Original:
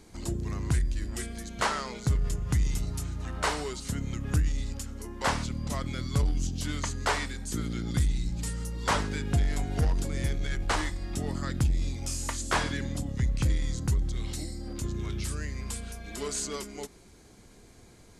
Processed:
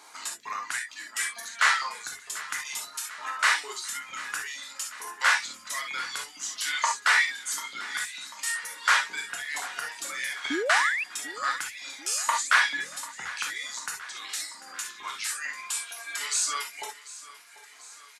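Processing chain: reverb removal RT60 1.9 s; in parallel at -1 dB: peak limiter -26 dBFS, peak gain reduction 11 dB; on the sum: LFO high-pass saw up 2.2 Hz 920–2300 Hz; gated-style reverb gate 90 ms flat, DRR 0 dB; painted sound rise, 10.50–11.04 s, 260–2800 Hz -29 dBFS; on a send: feedback delay 742 ms, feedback 58%, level -17 dB

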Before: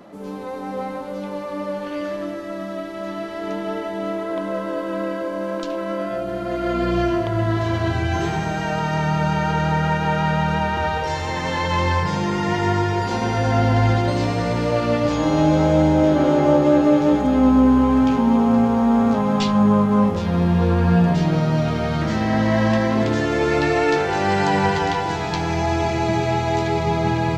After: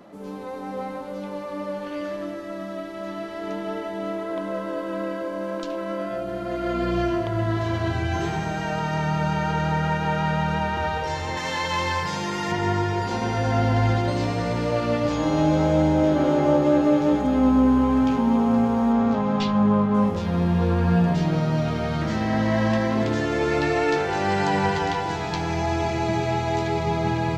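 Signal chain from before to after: 11.37–12.52 s: tilt EQ +2 dB/octave; 18.92–19.93 s: low-pass 6.2 kHz -> 4.1 kHz 12 dB/octave; trim -3.5 dB

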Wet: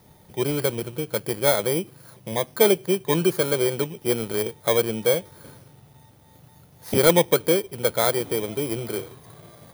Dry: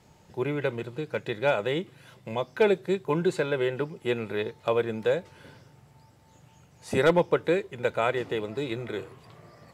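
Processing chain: bit-reversed sample order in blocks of 16 samples; trim +4.5 dB

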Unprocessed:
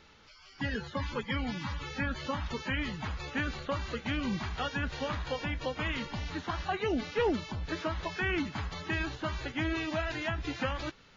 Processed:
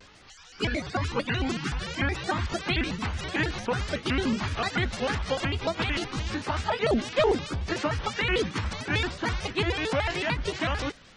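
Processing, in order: sawtooth pitch modulation +5 st, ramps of 216 ms; vibrato with a chosen wave square 6.7 Hz, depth 250 cents; trim +7 dB

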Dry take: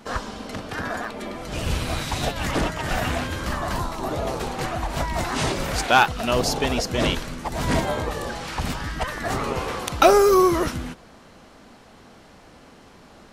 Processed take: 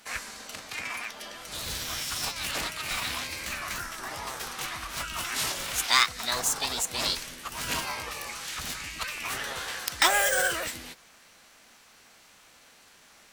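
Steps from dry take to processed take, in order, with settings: tracing distortion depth 0.036 ms; formant shift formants +6 st; tilt shelf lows -9 dB, about 1.2 kHz; trim -8.5 dB

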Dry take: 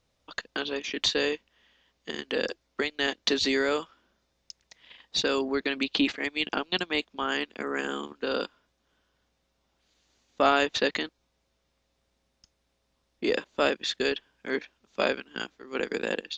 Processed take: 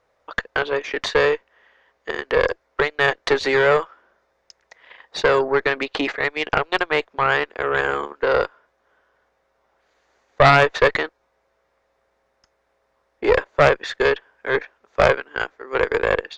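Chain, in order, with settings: high-order bell 900 Hz +15 dB 2.8 oct; Chebyshev shaper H 5 -7 dB, 6 -8 dB, 7 -19 dB, 8 -21 dB, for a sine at 6 dBFS; trim -10.5 dB

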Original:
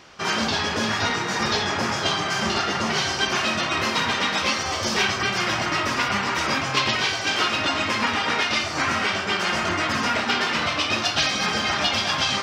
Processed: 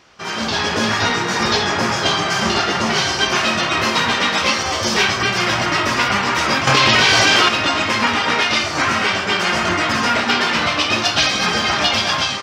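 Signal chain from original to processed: level rider gain up to 11 dB; doubling 17 ms -11.5 dB; 6.67–7.49 s: level flattener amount 100%; trim -3 dB

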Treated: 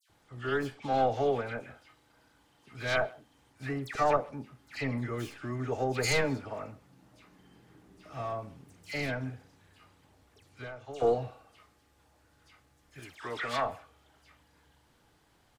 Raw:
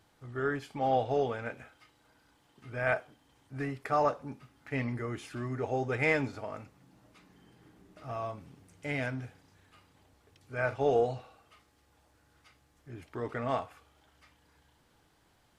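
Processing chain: tracing distortion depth 0.2 ms; 9.20–10.93 s: compression 10:1, threshold -41 dBFS, peak gain reduction 18.5 dB; 12.90–13.56 s: tilt shelf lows -9 dB, about 760 Hz; phase dispersion lows, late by 96 ms, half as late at 2.1 kHz; speakerphone echo 130 ms, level -23 dB; trim +1 dB

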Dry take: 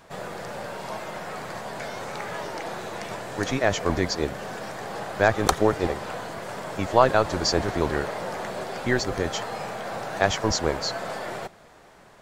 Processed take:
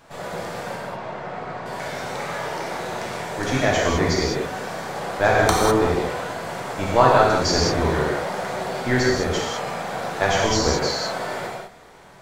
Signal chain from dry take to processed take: 0.75–1.66 s: tape spacing loss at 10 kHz 23 dB; gated-style reverb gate 230 ms flat, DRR -4.5 dB; trim -1 dB

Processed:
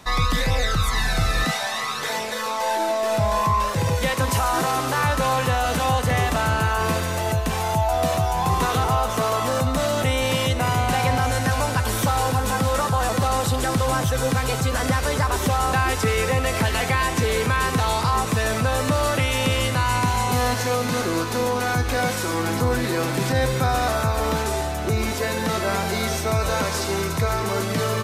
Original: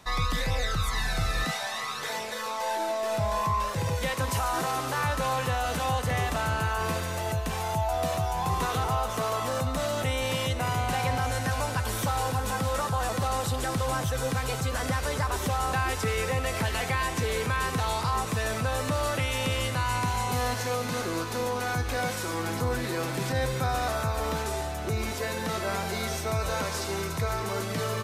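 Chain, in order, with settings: peaking EQ 250 Hz +2.5 dB 0.93 oct; trim +6.5 dB

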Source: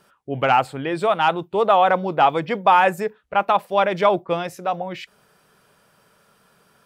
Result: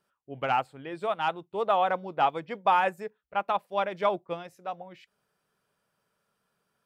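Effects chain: upward expansion 1.5:1, over -34 dBFS; trim -7.5 dB

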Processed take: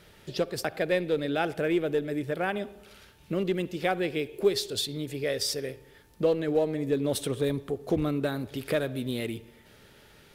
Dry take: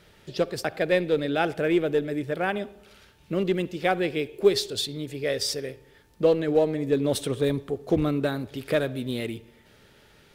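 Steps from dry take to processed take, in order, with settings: peaking EQ 12 kHz +4.5 dB 0.67 oct; in parallel at +2 dB: compression, threshold -30 dBFS, peak gain reduction 16 dB; on the sum: trim -6.5 dB

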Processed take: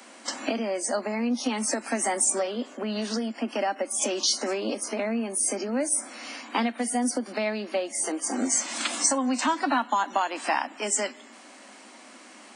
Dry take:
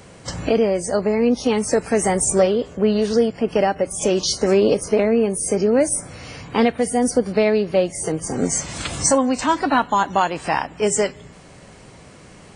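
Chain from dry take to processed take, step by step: steep high-pass 220 Hz 96 dB/octave; compression, threshold -19 dBFS, peak gain reduction 8 dB; peaking EQ 440 Hz -14.5 dB 0.48 oct

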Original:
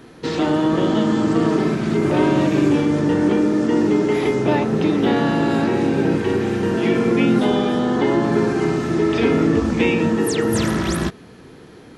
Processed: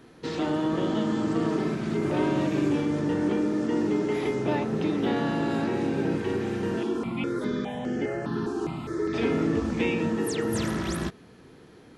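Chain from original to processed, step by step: 6.83–9.14 s: stepped phaser 4.9 Hz 570–3800 Hz; trim -8.5 dB

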